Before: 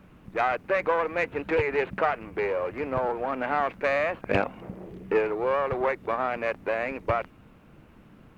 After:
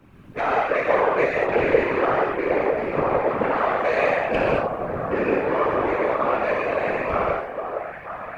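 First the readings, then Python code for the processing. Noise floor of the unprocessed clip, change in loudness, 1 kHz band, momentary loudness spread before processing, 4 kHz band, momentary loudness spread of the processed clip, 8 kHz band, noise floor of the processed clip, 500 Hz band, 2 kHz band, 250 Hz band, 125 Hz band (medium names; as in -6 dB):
-54 dBFS, +5.5 dB, +6.0 dB, 5 LU, +4.5 dB, 8 LU, no reading, -38 dBFS, +6.0 dB, +4.5 dB, +7.0 dB, +4.5 dB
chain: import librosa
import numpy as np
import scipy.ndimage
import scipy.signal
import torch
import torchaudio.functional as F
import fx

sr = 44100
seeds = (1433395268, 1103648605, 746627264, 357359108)

y = fx.echo_stepped(x, sr, ms=480, hz=560.0, octaves=0.7, feedback_pct=70, wet_db=-4.0)
y = fx.rev_gated(y, sr, seeds[0], gate_ms=250, shape='flat', drr_db=-6.0)
y = fx.whisperise(y, sr, seeds[1])
y = y * librosa.db_to_amplitude(-2.5)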